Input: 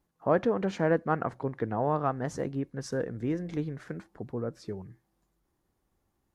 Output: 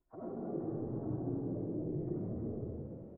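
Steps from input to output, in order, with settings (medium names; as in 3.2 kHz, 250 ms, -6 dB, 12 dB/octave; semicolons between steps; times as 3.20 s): frequency axis rescaled in octaves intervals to 114%; low-pass 1.3 kHz 12 dB/octave; hum notches 50/100 Hz; comb 2.8 ms, depth 53%; reverse; compression 5:1, threshold -43 dBFS, peak gain reduction 18.5 dB; reverse; low-pass that closes with the level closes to 310 Hz, closed at -45 dBFS; tempo 2×; frequency-shifting echo 231 ms, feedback 51%, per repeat +48 Hz, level -5.5 dB; reverberation RT60 1.6 s, pre-delay 30 ms, DRR -7.5 dB; trim +1.5 dB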